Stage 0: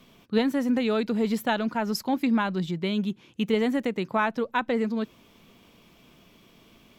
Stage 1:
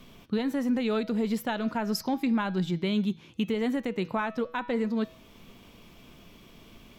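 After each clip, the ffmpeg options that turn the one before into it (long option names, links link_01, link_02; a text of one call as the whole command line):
ffmpeg -i in.wav -af "lowshelf=frequency=66:gain=11,bandreject=frequency=161.9:width_type=h:width=4,bandreject=frequency=323.8:width_type=h:width=4,bandreject=frequency=485.7:width_type=h:width=4,bandreject=frequency=647.6:width_type=h:width=4,bandreject=frequency=809.5:width_type=h:width=4,bandreject=frequency=971.4:width_type=h:width=4,bandreject=frequency=1133.3:width_type=h:width=4,bandreject=frequency=1295.2:width_type=h:width=4,bandreject=frequency=1457.1:width_type=h:width=4,bandreject=frequency=1619:width_type=h:width=4,bandreject=frequency=1780.9:width_type=h:width=4,bandreject=frequency=1942.8:width_type=h:width=4,bandreject=frequency=2104.7:width_type=h:width=4,bandreject=frequency=2266.6:width_type=h:width=4,bandreject=frequency=2428.5:width_type=h:width=4,bandreject=frequency=2590.4:width_type=h:width=4,bandreject=frequency=2752.3:width_type=h:width=4,bandreject=frequency=2914.2:width_type=h:width=4,bandreject=frequency=3076.1:width_type=h:width=4,bandreject=frequency=3238:width_type=h:width=4,bandreject=frequency=3399.9:width_type=h:width=4,bandreject=frequency=3561.8:width_type=h:width=4,bandreject=frequency=3723.7:width_type=h:width=4,bandreject=frequency=3885.6:width_type=h:width=4,bandreject=frequency=4047.5:width_type=h:width=4,bandreject=frequency=4209.4:width_type=h:width=4,bandreject=frequency=4371.3:width_type=h:width=4,bandreject=frequency=4533.2:width_type=h:width=4,bandreject=frequency=4695.1:width_type=h:width=4,bandreject=frequency=4857:width_type=h:width=4,bandreject=frequency=5018.9:width_type=h:width=4,bandreject=frequency=5180.8:width_type=h:width=4,bandreject=frequency=5342.7:width_type=h:width=4,bandreject=frequency=5504.6:width_type=h:width=4,bandreject=frequency=5666.5:width_type=h:width=4,bandreject=frequency=5828.4:width_type=h:width=4,bandreject=frequency=5990.3:width_type=h:width=4,bandreject=frequency=6152.2:width_type=h:width=4,bandreject=frequency=6314.1:width_type=h:width=4,alimiter=limit=-22dB:level=0:latency=1:release=409,volume=2.5dB" out.wav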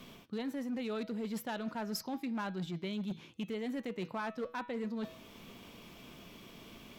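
ffmpeg -i in.wav -af "areverse,acompressor=threshold=-34dB:ratio=16,areverse,volume=32.5dB,asoftclip=hard,volume=-32.5dB,lowshelf=frequency=72:gain=-12,volume=1dB" out.wav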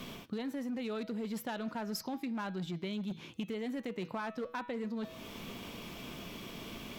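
ffmpeg -i in.wav -af "acompressor=threshold=-44dB:ratio=4,volume=7.5dB" out.wav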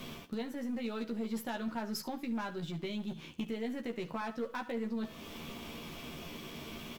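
ffmpeg -i in.wav -filter_complex "[0:a]asplit=2[link_01][link_02];[link_02]acrusher=bits=6:dc=4:mix=0:aa=0.000001,volume=-11dB[link_03];[link_01][link_03]amix=inputs=2:normalize=0,aecho=1:1:13|72:0.596|0.168,volume=-2.5dB" out.wav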